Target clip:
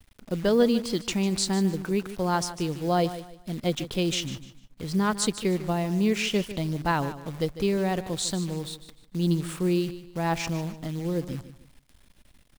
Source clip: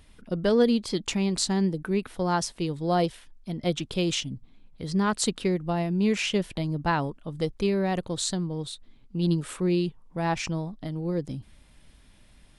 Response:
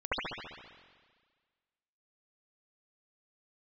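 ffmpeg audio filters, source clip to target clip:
-af "acrusher=bits=8:dc=4:mix=0:aa=0.000001,aecho=1:1:150|300|450:0.211|0.0613|0.0178"

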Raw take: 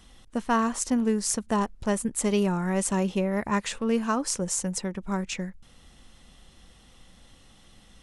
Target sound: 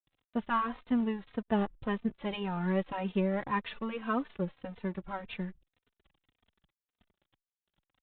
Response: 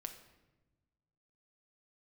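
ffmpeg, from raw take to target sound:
-filter_complex "[0:a]aresample=8000,aeval=exprs='sgn(val(0))*max(abs(val(0))-0.00501,0)':c=same,aresample=44100,asplit=2[a][b];[b]adelay=3.1,afreqshift=-1.8[c];[a][c]amix=inputs=2:normalize=1,volume=-1.5dB"

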